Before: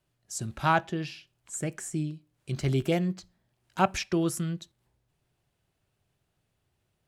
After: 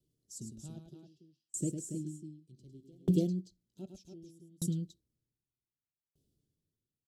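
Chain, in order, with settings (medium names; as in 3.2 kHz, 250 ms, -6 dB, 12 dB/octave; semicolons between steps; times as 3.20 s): coarse spectral quantiser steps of 15 dB; FFT filter 110 Hz 0 dB, 280 Hz +7 dB, 450 Hz +1 dB, 1 kHz -29 dB, 2.2 kHz -29 dB, 3.1 kHz -7 dB, 4.9 kHz 0 dB; on a send: loudspeakers at several distances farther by 36 m -4 dB, 97 m -1 dB; on the sum: sawtooth tremolo in dB decaying 0.65 Hz, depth 38 dB; trim -2 dB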